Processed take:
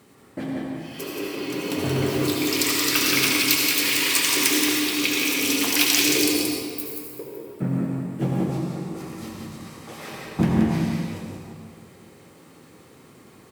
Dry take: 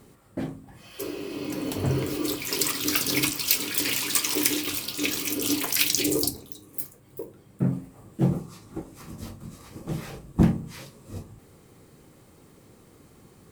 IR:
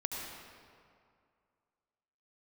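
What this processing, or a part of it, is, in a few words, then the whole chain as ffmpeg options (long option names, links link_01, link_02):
PA in a hall: -filter_complex "[0:a]asettb=1/sr,asplit=3[link_01][link_02][link_03];[link_01]atrim=end=9.684[link_04];[link_02]atrim=start=9.68:end=10.11,asetpts=PTS-STARTPTS,afade=type=in:duration=0.004:curve=qsin,afade=type=out:start_time=0.426:duration=0.004:curve=qsin,highpass=490[link_05];[link_03]atrim=start=10.106[link_06];[link_04][link_05]acrossfade=duration=0.004:curve1=hsin:curve2=qsin[link_07];[link_07][link_06]acrossfade=duration=0.004:curve1=qsin:curve2=hsin,highpass=120,equalizer=frequency=2400:width_type=o:width=2.3:gain=5,aecho=1:1:177:0.596[link_08];[1:a]atrim=start_sample=2205[link_09];[link_08][link_09]afir=irnorm=-1:irlink=0"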